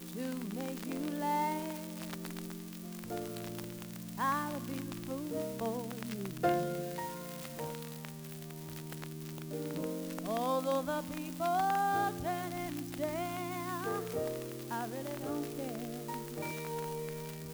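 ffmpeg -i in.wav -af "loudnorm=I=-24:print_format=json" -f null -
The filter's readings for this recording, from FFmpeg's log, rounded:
"input_i" : "-37.8",
"input_tp" : "-18.8",
"input_lra" : "4.9",
"input_thresh" : "-47.8",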